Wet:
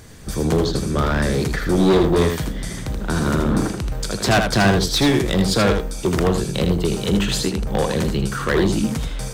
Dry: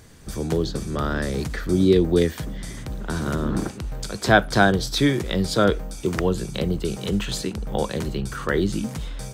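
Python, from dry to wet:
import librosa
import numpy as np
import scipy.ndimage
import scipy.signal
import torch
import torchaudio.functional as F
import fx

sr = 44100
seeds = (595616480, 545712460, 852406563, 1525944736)

p1 = np.clip(x, -10.0 ** (-18.5 / 20.0), 10.0 ** (-18.5 / 20.0))
p2 = p1 + fx.echo_single(p1, sr, ms=80, db=-6.0, dry=0)
y = p2 * 10.0 ** (5.5 / 20.0)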